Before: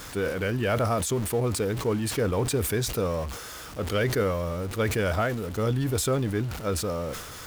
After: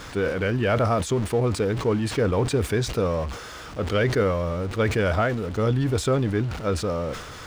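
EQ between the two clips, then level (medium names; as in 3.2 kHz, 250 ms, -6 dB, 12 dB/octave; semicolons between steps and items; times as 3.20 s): treble shelf 7.9 kHz -11 dB; peaking EQ 15 kHz -10.5 dB 0.75 oct; +3.5 dB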